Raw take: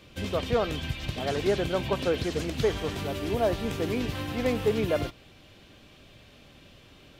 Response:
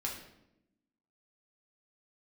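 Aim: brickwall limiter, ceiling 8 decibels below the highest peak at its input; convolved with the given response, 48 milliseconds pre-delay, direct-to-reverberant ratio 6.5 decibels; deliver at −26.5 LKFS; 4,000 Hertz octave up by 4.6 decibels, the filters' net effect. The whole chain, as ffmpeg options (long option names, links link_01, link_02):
-filter_complex "[0:a]equalizer=frequency=4000:width_type=o:gain=6,alimiter=limit=-20.5dB:level=0:latency=1,asplit=2[link_01][link_02];[1:a]atrim=start_sample=2205,adelay=48[link_03];[link_02][link_03]afir=irnorm=-1:irlink=0,volume=-8.5dB[link_04];[link_01][link_04]amix=inputs=2:normalize=0,volume=3.5dB"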